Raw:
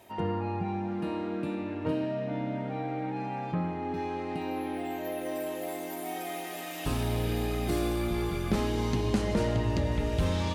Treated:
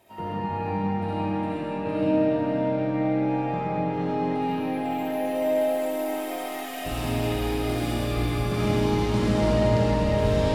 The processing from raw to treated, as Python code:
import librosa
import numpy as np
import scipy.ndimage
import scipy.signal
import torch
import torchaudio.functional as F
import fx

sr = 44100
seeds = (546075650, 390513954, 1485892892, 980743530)

p1 = fx.notch(x, sr, hz=6300.0, q=21.0)
p2 = p1 + fx.echo_feedback(p1, sr, ms=498, feedback_pct=38, wet_db=-7.5, dry=0)
p3 = fx.rev_freeverb(p2, sr, rt60_s=4.1, hf_ratio=0.8, predelay_ms=25, drr_db=-9.5)
y = F.gain(torch.from_numpy(p3), -5.0).numpy()